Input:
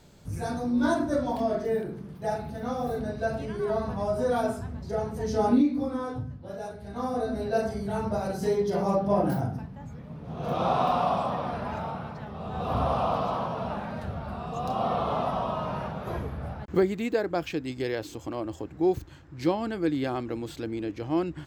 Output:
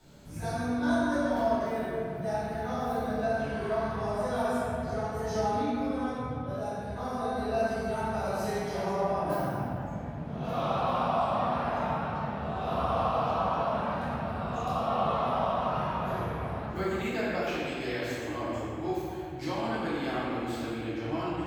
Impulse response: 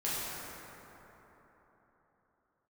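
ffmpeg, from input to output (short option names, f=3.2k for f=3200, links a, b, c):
-filter_complex "[0:a]acrossover=split=86|740[a][b][c];[a]acompressor=threshold=-49dB:ratio=4[d];[b]acompressor=threshold=-37dB:ratio=4[e];[c]acompressor=threshold=-32dB:ratio=4[f];[d][e][f]amix=inputs=3:normalize=0[g];[1:a]atrim=start_sample=2205,asetrate=70560,aresample=44100[h];[g][h]afir=irnorm=-1:irlink=0"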